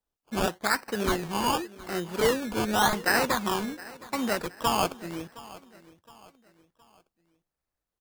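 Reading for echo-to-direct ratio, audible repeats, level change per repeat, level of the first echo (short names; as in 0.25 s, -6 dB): -18.5 dB, 3, -7.5 dB, -19.5 dB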